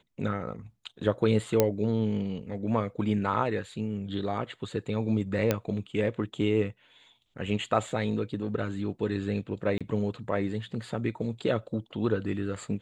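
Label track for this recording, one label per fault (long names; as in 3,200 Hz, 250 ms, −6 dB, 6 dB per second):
1.600000	1.600000	click −7 dBFS
5.510000	5.510000	click −10 dBFS
7.900000	7.900000	drop-out 2.7 ms
9.780000	9.810000	drop-out 26 ms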